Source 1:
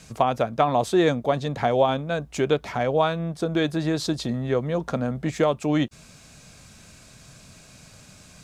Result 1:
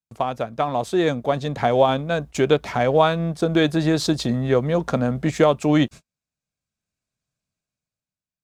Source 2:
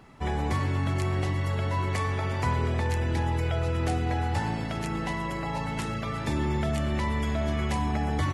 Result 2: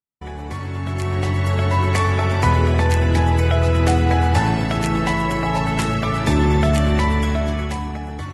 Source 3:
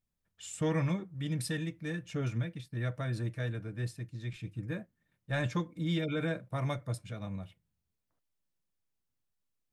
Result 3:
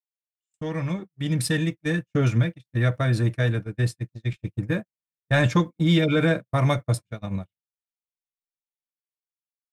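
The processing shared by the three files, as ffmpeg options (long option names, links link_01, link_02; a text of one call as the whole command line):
ffmpeg -i in.wav -filter_complex "[0:a]agate=range=-45dB:threshold=-38dB:ratio=16:detection=peak,dynaudnorm=framelen=210:gausssize=11:maxgain=15.5dB,asplit=2[link_01][link_02];[link_02]aeval=exprs='sgn(val(0))*max(abs(val(0))-0.0299,0)':channel_layout=same,volume=-11.5dB[link_03];[link_01][link_03]amix=inputs=2:normalize=0,volume=-4.5dB" out.wav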